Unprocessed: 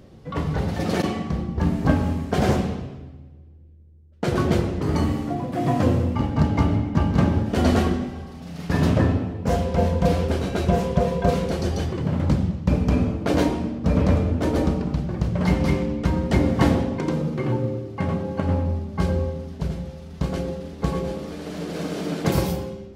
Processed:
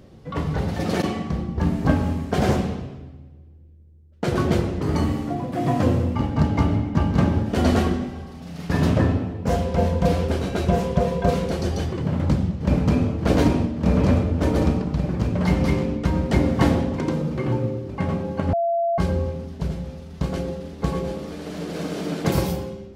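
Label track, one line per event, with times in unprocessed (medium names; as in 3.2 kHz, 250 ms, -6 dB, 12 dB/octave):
12.020000	13.070000	echo throw 580 ms, feedback 80%, level -3 dB
18.530000	18.980000	bleep 680 Hz -18.5 dBFS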